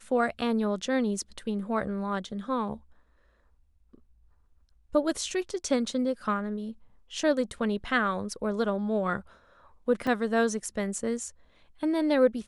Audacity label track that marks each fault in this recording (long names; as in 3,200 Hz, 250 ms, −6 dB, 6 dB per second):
10.070000	10.070000	drop-out 3.5 ms